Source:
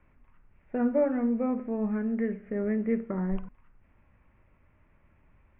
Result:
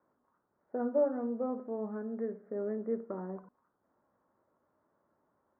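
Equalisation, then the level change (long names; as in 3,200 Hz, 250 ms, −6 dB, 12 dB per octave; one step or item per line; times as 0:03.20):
high-pass filter 420 Hz 12 dB per octave
Butterworth low-pass 1,500 Hz 36 dB per octave
tilt shelving filter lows +5 dB, about 890 Hz
−3.5 dB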